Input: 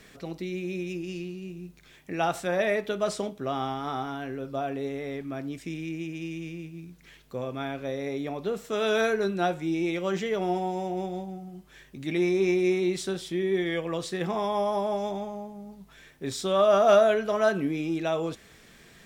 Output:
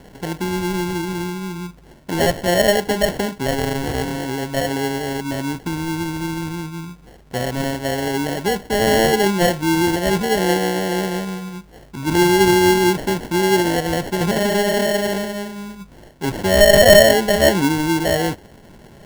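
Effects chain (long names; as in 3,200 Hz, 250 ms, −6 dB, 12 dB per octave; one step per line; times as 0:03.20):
low-shelf EQ 320 Hz +5 dB
decimation without filtering 36×
level +8 dB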